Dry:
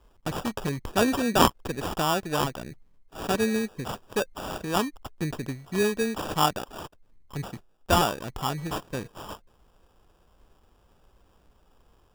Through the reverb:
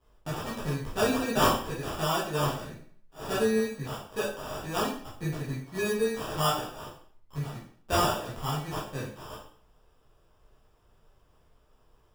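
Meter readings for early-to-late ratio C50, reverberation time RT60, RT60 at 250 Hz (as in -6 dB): 4.5 dB, 0.55 s, 0.55 s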